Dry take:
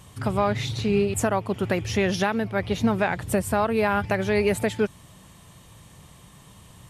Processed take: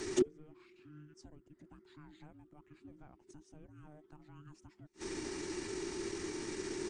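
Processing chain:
gate with flip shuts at −24 dBFS, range −41 dB
pitch shifter −5 semitones
frequency shifter −450 Hz
level +8 dB

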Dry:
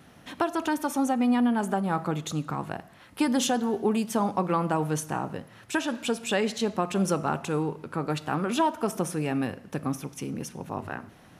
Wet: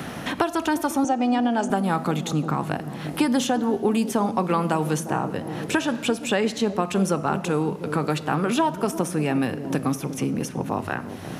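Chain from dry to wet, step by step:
0:01.04–0:01.70: loudspeaker in its box 270–7,400 Hz, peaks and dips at 700 Hz +6 dB, 1,100 Hz −6 dB, 2,100 Hz −5 dB, 3,900 Hz −4 dB, 6,000 Hz +5 dB
delay with a low-pass on its return 351 ms, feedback 51%, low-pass 520 Hz, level −11 dB
multiband upward and downward compressor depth 70%
level +3.5 dB

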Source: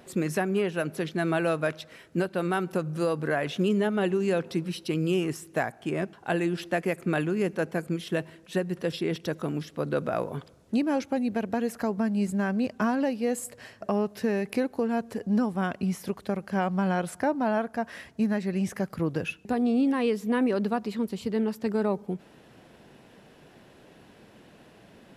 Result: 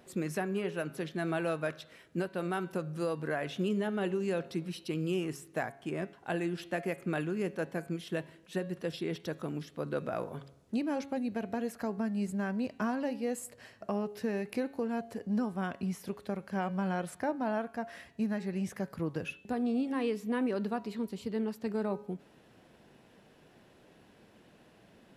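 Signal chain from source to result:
hum removal 138.3 Hz, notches 33
level −6.5 dB

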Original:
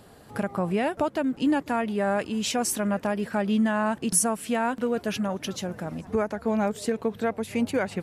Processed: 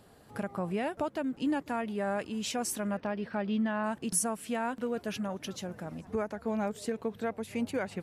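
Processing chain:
0:02.97–0:03.84: Savitzky-Golay smoothing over 15 samples
level −7 dB

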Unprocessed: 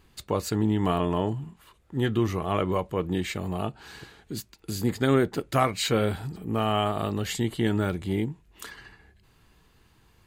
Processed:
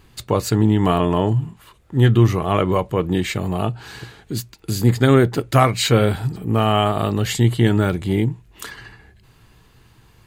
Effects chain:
parametric band 120 Hz +10 dB 0.2 octaves
level +7.5 dB

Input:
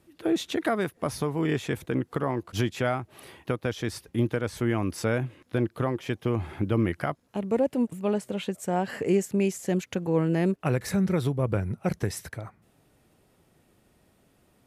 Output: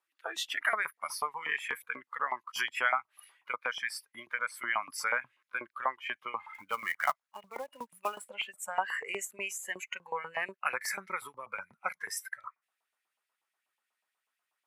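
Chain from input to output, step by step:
noise reduction from a noise print of the clip's start 18 dB
auto-filter high-pass saw up 8.2 Hz 890–2,500 Hz
0:06.54–0:08.27: floating-point word with a short mantissa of 2 bits

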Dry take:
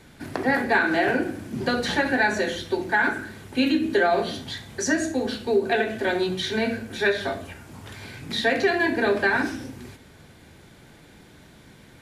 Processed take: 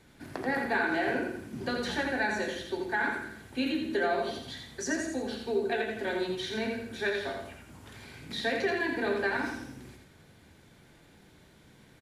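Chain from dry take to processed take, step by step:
repeating echo 84 ms, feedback 37%, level −5 dB
level −9 dB

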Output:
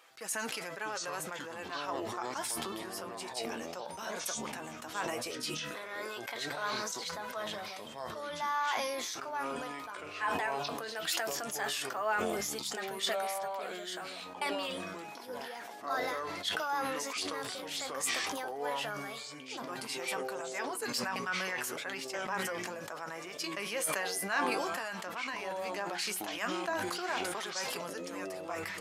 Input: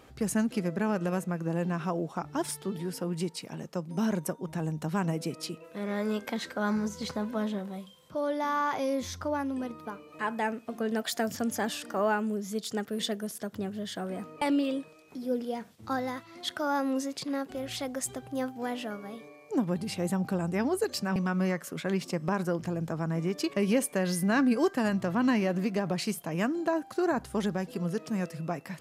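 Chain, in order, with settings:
high-pass filter 940 Hz 12 dB per octave
0:24.53–0:25.51: downward compressor 2.5 to 1, threshold −38 dBFS, peak gain reduction 6 dB
flanger 0.14 Hz, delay 5.9 ms, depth 5.3 ms, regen +48%
delay with pitch and tempo change per echo 540 ms, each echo −7 semitones, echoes 2, each echo −6 dB
level that may fall only so fast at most 20 dB per second
level +3 dB

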